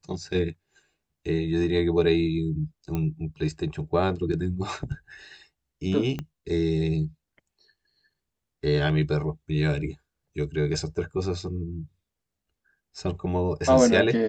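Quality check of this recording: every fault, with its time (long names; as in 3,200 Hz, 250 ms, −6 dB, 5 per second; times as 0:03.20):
0:02.95: click −17 dBFS
0:06.19: click −19 dBFS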